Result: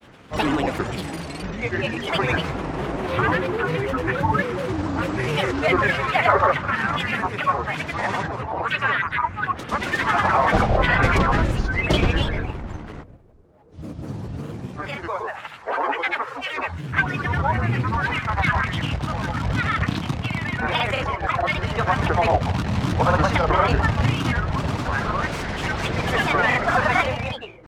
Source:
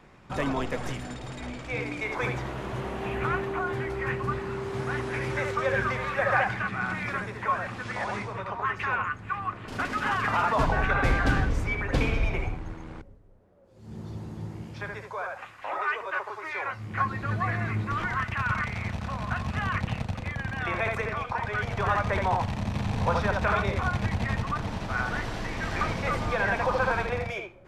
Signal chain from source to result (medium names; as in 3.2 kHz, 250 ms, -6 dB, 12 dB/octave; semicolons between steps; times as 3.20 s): high-pass 43 Hz; reverberation RT60 0.30 s, pre-delay 42 ms, DRR 17 dB; granulator, pitch spread up and down by 7 st; trim +8 dB